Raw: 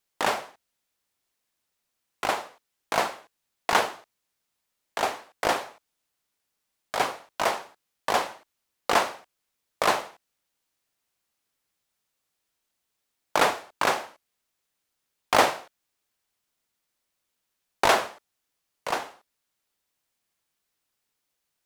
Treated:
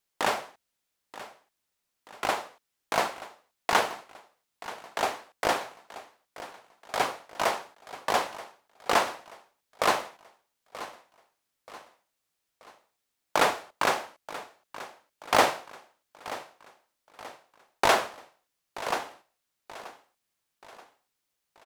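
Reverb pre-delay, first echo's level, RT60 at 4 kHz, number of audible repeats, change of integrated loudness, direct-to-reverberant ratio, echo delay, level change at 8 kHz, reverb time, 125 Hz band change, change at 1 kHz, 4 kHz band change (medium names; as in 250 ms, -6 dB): no reverb, -16.0 dB, no reverb, 3, -2.0 dB, no reverb, 931 ms, -1.5 dB, no reverb, -1.5 dB, -1.5 dB, -1.5 dB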